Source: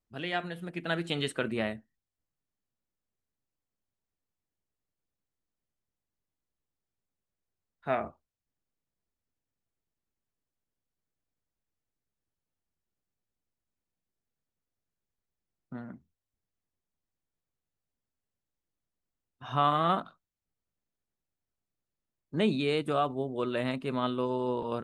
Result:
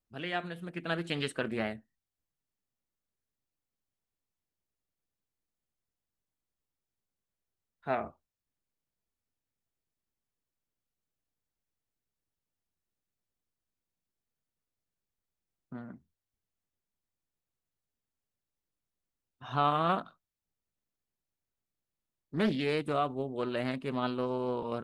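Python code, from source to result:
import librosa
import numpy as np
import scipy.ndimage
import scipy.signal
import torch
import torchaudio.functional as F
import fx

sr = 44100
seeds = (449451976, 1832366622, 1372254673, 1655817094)

y = fx.doppler_dist(x, sr, depth_ms=0.38)
y = y * librosa.db_to_amplitude(-2.0)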